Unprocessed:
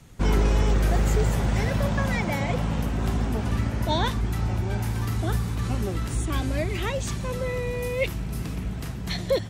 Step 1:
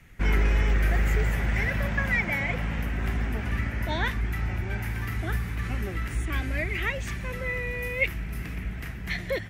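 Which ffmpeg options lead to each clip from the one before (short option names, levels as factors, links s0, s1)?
-af "equalizer=f=125:t=o:w=1:g=-6,equalizer=f=250:t=o:w=1:g=-4,equalizer=f=500:t=o:w=1:g=-5,equalizer=f=1000:t=o:w=1:g=-7,equalizer=f=2000:t=o:w=1:g=11,equalizer=f=4000:t=o:w=1:g=-8,equalizer=f=8000:t=o:w=1:g=-9"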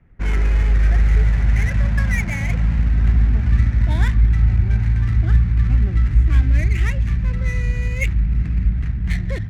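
-af "asubboost=boost=7:cutoff=180,adynamicsmooth=sensitivity=7:basefreq=1000"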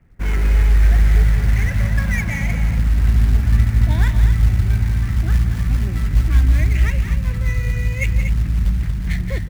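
-filter_complex "[0:a]acrusher=bits=7:mode=log:mix=0:aa=0.000001,asplit=2[s0][s1];[s1]aecho=0:1:172|236.2:0.282|0.355[s2];[s0][s2]amix=inputs=2:normalize=0"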